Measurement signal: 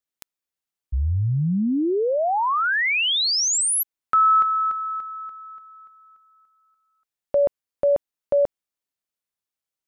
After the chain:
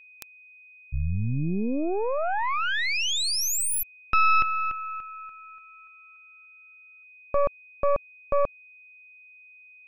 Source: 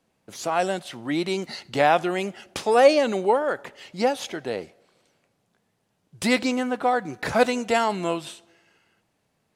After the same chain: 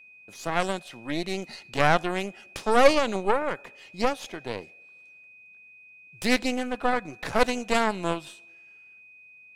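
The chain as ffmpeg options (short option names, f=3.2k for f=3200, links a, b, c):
-af "aeval=exprs='0.631*(cos(1*acos(clip(val(0)/0.631,-1,1)))-cos(1*PI/2))+0.112*(cos(3*acos(clip(val(0)/0.631,-1,1)))-cos(3*PI/2))+0.0794*(cos(6*acos(clip(val(0)/0.631,-1,1)))-cos(6*PI/2))':c=same,aeval=exprs='val(0)+0.00355*sin(2*PI*2500*n/s)':c=same"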